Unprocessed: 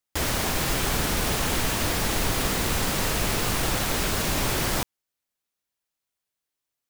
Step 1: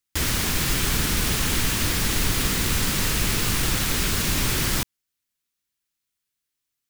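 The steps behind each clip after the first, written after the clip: bell 670 Hz -11 dB 1.4 oct; gain +3.5 dB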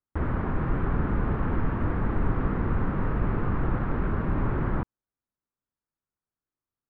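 LPF 1300 Hz 24 dB/oct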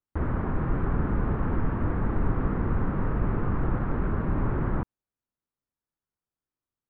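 high shelf 2700 Hz -8.5 dB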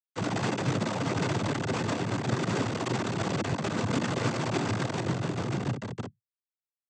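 multi-head echo 0.146 s, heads all three, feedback 58%, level -13.5 dB; Schmitt trigger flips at -41.5 dBFS; noise vocoder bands 16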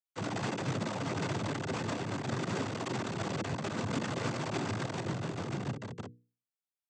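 notches 60/120/180/240/300/360/420/480 Hz; gain -5 dB

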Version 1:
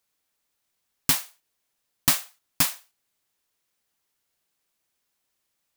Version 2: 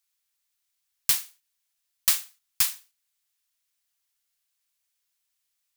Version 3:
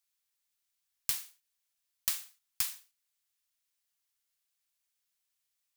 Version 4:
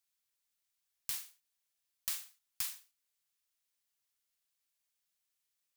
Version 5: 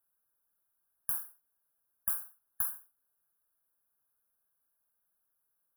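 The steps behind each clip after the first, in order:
passive tone stack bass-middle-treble 10-0-10
compressor, threshold -23 dBFS, peak gain reduction 7.5 dB; gain -4.5 dB
limiter -18 dBFS, peak gain reduction 6.5 dB; gain -2 dB
brick-wall FIR band-stop 1700–9800 Hz; gain +6.5 dB

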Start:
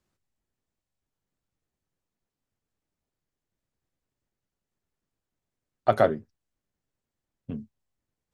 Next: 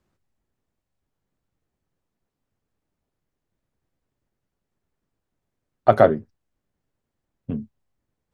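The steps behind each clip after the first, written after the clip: high shelf 2600 Hz -9 dB; gain +7 dB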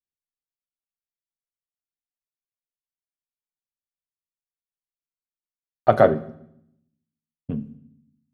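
expander -40 dBFS; on a send at -11.5 dB: reverb RT60 0.75 s, pre-delay 3 ms; on the sum: gain -1 dB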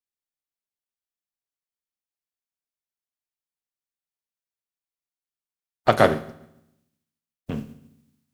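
spectral contrast lowered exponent 0.62; gain -1.5 dB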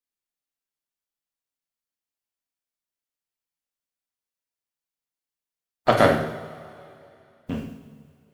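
two-slope reverb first 0.65 s, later 2.8 s, from -17 dB, DRR 1 dB; gain -1.5 dB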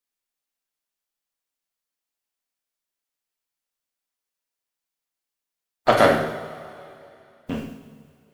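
bell 97 Hz -6.5 dB 2.5 oct; in parallel at -4 dB: soft clip -19.5 dBFS, distortion -7 dB

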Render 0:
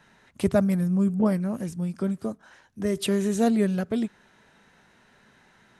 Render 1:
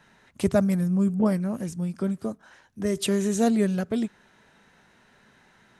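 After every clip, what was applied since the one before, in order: dynamic EQ 6700 Hz, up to +5 dB, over -54 dBFS, Q 1.6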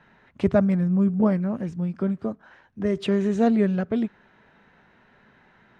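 LPF 2600 Hz 12 dB/oct; gain +2 dB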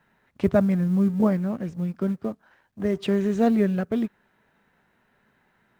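G.711 law mismatch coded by A

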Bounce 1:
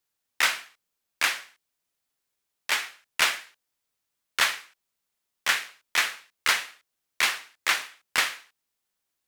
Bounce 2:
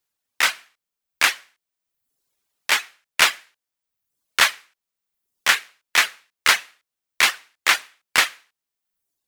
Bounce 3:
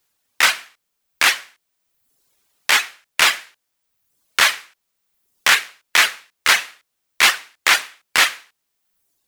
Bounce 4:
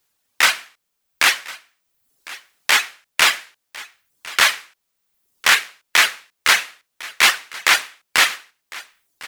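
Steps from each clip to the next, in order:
reverb removal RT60 0.85 s; AGC gain up to 7 dB; gain +1.5 dB
maximiser +11.5 dB; gain -1 dB
echo 1.054 s -19.5 dB

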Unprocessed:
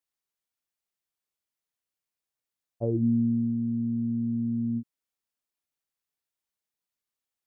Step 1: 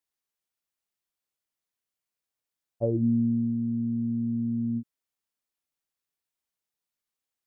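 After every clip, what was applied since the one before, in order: dynamic EQ 570 Hz, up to +6 dB, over -50 dBFS, Q 6.4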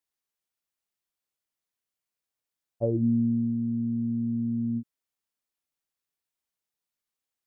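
nothing audible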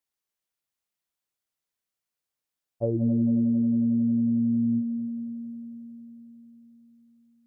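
multi-head echo 90 ms, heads second and third, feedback 70%, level -14 dB

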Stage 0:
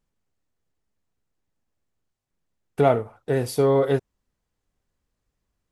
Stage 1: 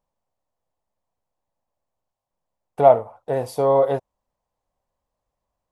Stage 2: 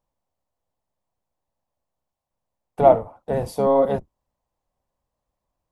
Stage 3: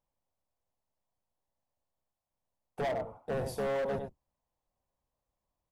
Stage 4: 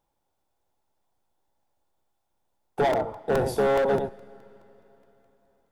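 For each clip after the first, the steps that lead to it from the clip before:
band shelf 750 Hz +13 dB 1.3 oct; gain -5.5 dB
octaver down 1 oct, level -1 dB; gain -1 dB
echo 97 ms -10.5 dB; compressor 4:1, threshold -19 dBFS, peak gain reduction 10 dB; hard clip -23 dBFS, distortion -9 dB; gain -6.5 dB
small resonant body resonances 360/830/1400/3500 Hz, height 8 dB, ringing for 20 ms; on a send at -23.5 dB: reverb RT60 4.0 s, pre-delay 90 ms; on the sum: crackling interface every 0.21 s, samples 128, repeat, from 0.41; gain +7 dB

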